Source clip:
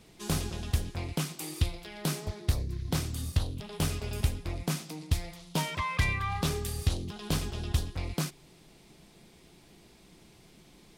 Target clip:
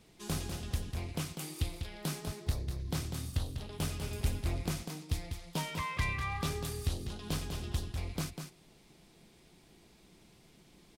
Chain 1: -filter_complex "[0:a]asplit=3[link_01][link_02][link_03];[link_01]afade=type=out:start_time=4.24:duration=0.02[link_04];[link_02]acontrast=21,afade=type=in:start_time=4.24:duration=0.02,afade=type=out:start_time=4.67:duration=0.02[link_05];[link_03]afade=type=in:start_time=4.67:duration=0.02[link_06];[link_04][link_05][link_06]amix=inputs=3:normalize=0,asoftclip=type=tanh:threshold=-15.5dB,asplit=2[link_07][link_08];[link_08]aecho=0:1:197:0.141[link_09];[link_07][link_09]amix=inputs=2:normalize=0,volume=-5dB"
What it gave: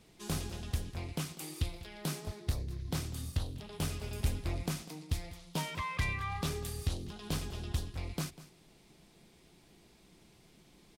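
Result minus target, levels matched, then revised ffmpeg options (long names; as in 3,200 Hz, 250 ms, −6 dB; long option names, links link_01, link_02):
echo-to-direct −10 dB
-filter_complex "[0:a]asplit=3[link_01][link_02][link_03];[link_01]afade=type=out:start_time=4.24:duration=0.02[link_04];[link_02]acontrast=21,afade=type=in:start_time=4.24:duration=0.02,afade=type=out:start_time=4.67:duration=0.02[link_05];[link_03]afade=type=in:start_time=4.67:duration=0.02[link_06];[link_04][link_05][link_06]amix=inputs=3:normalize=0,asoftclip=type=tanh:threshold=-15.5dB,asplit=2[link_07][link_08];[link_08]aecho=0:1:197:0.447[link_09];[link_07][link_09]amix=inputs=2:normalize=0,volume=-5dB"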